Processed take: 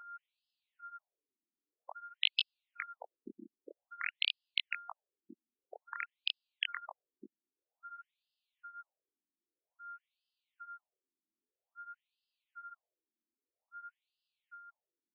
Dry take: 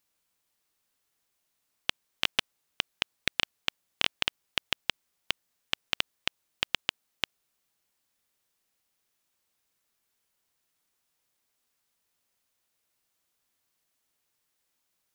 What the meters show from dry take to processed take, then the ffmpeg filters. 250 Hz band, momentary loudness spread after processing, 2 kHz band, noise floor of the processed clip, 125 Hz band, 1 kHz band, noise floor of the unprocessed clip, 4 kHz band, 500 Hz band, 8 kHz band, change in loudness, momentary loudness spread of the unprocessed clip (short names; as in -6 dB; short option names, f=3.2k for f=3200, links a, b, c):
-9.0 dB, 22 LU, -7.0 dB, under -85 dBFS, under -20 dB, -3.5 dB, -79 dBFS, -7.0 dB, -11.5 dB, under -30 dB, -7.0 dB, 6 LU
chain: -af "aeval=exprs='val(0)+0.00631*sin(2*PI*1400*n/s)':c=same,flanger=delay=19:depth=7.5:speed=0.41,afftfilt=real='re*between(b*sr/1024,260*pow(3700/260,0.5+0.5*sin(2*PI*0.51*pts/sr))/1.41,260*pow(3700/260,0.5+0.5*sin(2*PI*0.51*pts/sr))*1.41)':imag='im*between(b*sr/1024,260*pow(3700/260,0.5+0.5*sin(2*PI*0.51*pts/sr))/1.41,260*pow(3700/260,0.5+0.5*sin(2*PI*0.51*pts/sr))*1.41)':win_size=1024:overlap=0.75,volume=1dB"